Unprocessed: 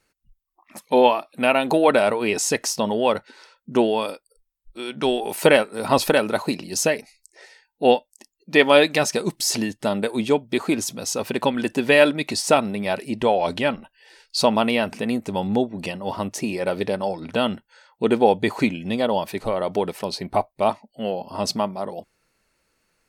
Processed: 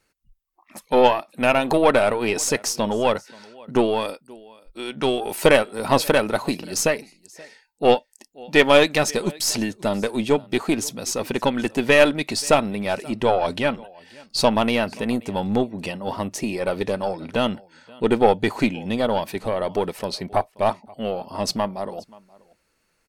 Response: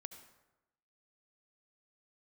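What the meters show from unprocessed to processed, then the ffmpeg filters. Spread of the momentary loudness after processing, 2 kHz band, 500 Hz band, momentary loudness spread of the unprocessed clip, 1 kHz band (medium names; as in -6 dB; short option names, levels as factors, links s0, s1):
11 LU, 0.0 dB, 0.0 dB, 10 LU, 0.0 dB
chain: -af "aecho=1:1:530:0.0631,aeval=exprs='0.891*(cos(1*acos(clip(val(0)/0.891,-1,1)))-cos(1*PI/2))+0.0562*(cos(6*acos(clip(val(0)/0.891,-1,1)))-cos(6*PI/2))':c=same"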